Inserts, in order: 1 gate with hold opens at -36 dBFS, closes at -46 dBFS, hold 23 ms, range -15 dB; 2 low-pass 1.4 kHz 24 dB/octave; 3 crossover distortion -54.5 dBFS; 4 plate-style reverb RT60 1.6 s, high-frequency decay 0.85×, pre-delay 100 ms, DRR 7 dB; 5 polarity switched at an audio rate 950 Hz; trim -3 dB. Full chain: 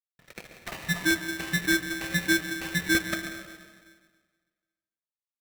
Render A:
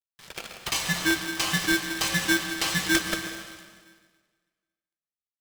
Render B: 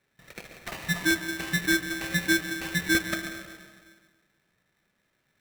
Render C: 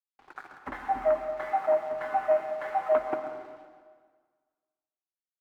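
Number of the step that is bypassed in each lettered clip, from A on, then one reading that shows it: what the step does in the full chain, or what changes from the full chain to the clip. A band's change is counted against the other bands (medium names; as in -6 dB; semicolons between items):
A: 2, 1 kHz band +7.5 dB; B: 3, distortion -30 dB; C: 5, 1 kHz band +30.5 dB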